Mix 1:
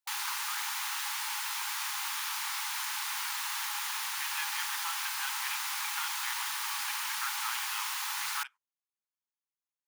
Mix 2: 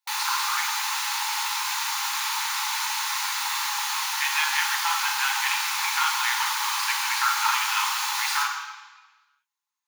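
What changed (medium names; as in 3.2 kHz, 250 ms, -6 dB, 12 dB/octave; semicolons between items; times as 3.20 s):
speech +7.5 dB; reverb: on, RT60 1.1 s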